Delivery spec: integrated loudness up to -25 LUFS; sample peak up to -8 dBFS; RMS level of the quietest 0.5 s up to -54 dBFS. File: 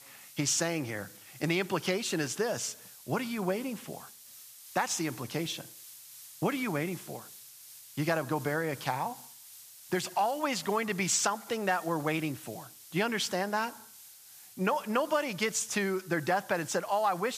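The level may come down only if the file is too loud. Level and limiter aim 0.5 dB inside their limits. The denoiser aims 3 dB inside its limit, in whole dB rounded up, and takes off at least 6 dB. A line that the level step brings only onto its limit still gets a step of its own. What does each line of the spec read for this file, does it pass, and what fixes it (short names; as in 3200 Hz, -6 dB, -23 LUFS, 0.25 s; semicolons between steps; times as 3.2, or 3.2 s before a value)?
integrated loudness -31.5 LUFS: OK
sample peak -13.5 dBFS: OK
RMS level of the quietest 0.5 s -53 dBFS: fail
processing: denoiser 6 dB, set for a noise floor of -53 dBFS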